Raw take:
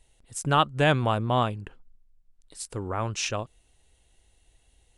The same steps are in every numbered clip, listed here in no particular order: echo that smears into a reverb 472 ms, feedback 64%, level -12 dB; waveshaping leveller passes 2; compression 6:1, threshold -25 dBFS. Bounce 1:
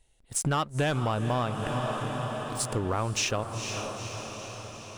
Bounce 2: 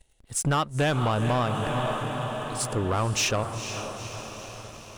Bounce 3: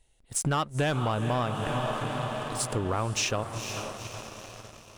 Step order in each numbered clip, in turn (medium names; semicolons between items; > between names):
waveshaping leveller > echo that smears into a reverb > compression; echo that smears into a reverb > compression > waveshaping leveller; echo that smears into a reverb > waveshaping leveller > compression